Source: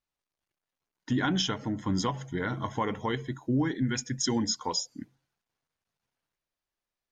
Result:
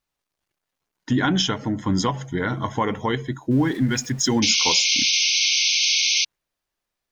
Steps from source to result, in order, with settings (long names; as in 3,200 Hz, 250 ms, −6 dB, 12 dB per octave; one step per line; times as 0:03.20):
0:03.51–0:04.40: converter with a step at zero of −44.5 dBFS
0:04.42–0:06.25: sound drawn into the spectrogram noise 2,100–6,400 Hz −27 dBFS
level +7 dB